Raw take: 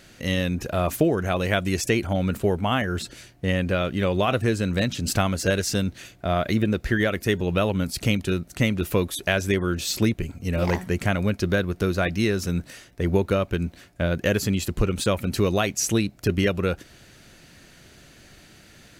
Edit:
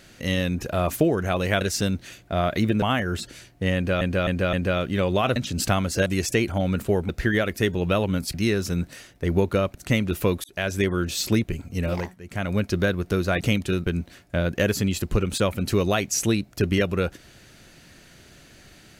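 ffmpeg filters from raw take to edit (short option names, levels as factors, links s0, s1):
-filter_complex "[0:a]asplit=16[s0][s1][s2][s3][s4][s5][s6][s7][s8][s9][s10][s11][s12][s13][s14][s15];[s0]atrim=end=1.612[s16];[s1]atrim=start=5.538:end=6.752[s17];[s2]atrim=start=2.638:end=3.832[s18];[s3]atrim=start=3.568:end=3.832[s19];[s4]atrim=start=3.568:end=3.832[s20];[s5]atrim=start=3.568:end=4.402[s21];[s6]atrim=start=4.838:end=5.542[s22];[s7]atrim=start=1.608:end=2.642[s23];[s8]atrim=start=6.748:end=8.002[s24];[s9]atrim=start=12.108:end=13.522[s25];[s10]atrim=start=8.448:end=9.14,asetpts=PTS-STARTPTS,afade=t=out:st=0.688:d=0.004:c=hsin[s26];[s11]atrim=start=9.14:end=10.86,asetpts=PTS-STARTPTS,afade=t=in:d=0.45:c=qsin,afade=t=out:st=1.37:d=0.35:silence=0.125893[s27];[s12]atrim=start=10.86:end=10.93,asetpts=PTS-STARTPTS,volume=0.126[s28];[s13]atrim=start=10.93:end=12.112,asetpts=PTS-STARTPTS,afade=t=in:d=0.35:silence=0.125893[s29];[s14]atrim=start=7.998:end=8.452[s30];[s15]atrim=start=13.518[s31];[s16][s17]acrossfade=d=0.004:c1=hsin:c2=hsin[s32];[s32][s18]acrossfade=d=0.004:c1=hsin:c2=hsin[s33];[s33][s19]acrossfade=d=0.004:c1=hsin:c2=hsin[s34];[s34][s20]acrossfade=d=0.004:c1=hsin:c2=hsin[s35];[s35][s21]acrossfade=d=0.004:c1=hsin:c2=hsin[s36];[s36][s22]acrossfade=d=0.004:c1=hsin:c2=hsin[s37];[s37][s23]acrossfade=d=0.004:c1=hsin:c2=hsin[s38];[s38][s24]acrossfade=d=0.004:c1=hsin:c2=hsin[s39];[s39][s25]acrossfade=d=0.004:c1=hsin:c2=hsin[s40];[s26][s27][s28][s29]concat=n=4:v=0:a=1[s41];[s40][s41]acrossfade=d=0.004:c1=hsin:c2=hsin[s42];[s42][s30]acrossfade=d=0.004:c1=hsin:c2=hsin[s43];[s43][s31]acrossfade=d=0.004:c1=hsin:c2=hsin"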